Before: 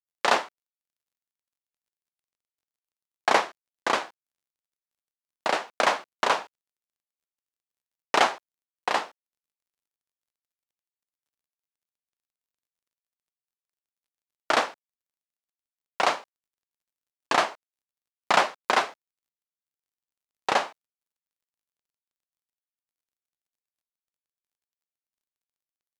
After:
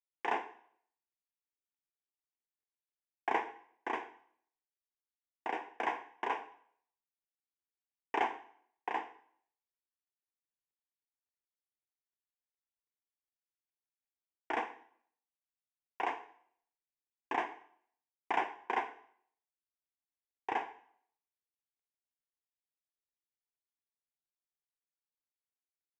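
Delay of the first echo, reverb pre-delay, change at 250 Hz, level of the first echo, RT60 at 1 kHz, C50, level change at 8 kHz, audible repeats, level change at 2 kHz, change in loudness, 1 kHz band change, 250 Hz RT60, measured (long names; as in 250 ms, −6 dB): no echo audible, 7 ms, −8.5 dB, no echo audible, 0.65 s, 14.0 dB, below −25 dB, no echo audible, −12.5 dB, −12.5 dB, −10.5 dB, 0.65 s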